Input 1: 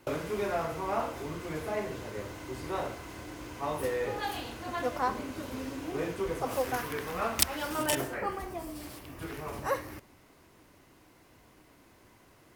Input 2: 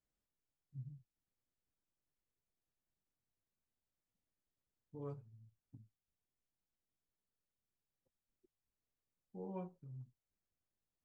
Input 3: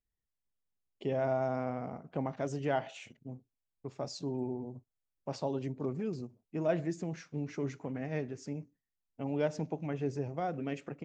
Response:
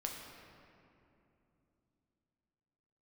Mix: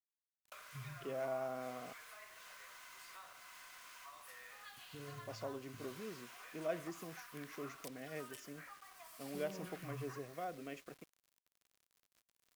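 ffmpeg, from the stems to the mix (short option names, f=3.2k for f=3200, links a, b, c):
-filter_complex "[0:a]highpass=f=940:w=0.5412,highpass=f=940:w=1.3066,acompressor=threshold=-47dB:ratio=8,adelay=450,volume=-5.5dB,asplit=3[a][b][c];[b]volume=-23dB[d];[c]volume=-17.5dB[e];[1:a]alimiter=level_in=22dB:limit=-24dB:level=0:latency=1,volume=-22dB,volume=2.5dB,asplit=2[f][g];[g]volume=-9.5dB[h];[2:a]highpass=f=500:p=1,volume=-6dB,asplit=3[i][j][k];[i]atrim=end=1.93,asetpts=PTS-STARTPTS,afade=t=out:st=1.926:d=0.004:c=hsin[l];[j]atrim=start=1.93:end=4.77,asetpts=PTS-STARTPTS,volume=0[m];[k]atrim=start=4.77,asetpts=PTS-STARTPTS,afade=t=in:d=0.004:c=hsin[n];[l][m][n]concat=n=3:v=0:a=1[o];[3:a]atrim=start_sample=2205[p];[d][p]afir=irnorm=-1:irlink=0[q];[e][h]amix=inputs=2:normalize=0,aecho=0:1:145:1[r];[a][f][o][q][r]amix=inputs=5:normalize=0,acrusher=bits=9:mix=0:aa=0.000001,asuperstop=centerf=870:order=4:qfactor=6.2"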